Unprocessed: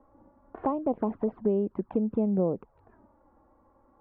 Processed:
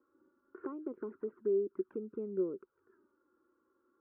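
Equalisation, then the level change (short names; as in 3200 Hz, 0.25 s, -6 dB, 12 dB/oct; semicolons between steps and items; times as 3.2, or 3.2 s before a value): double band-pass 730 Hz, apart 1.9 oct; 0.0 dB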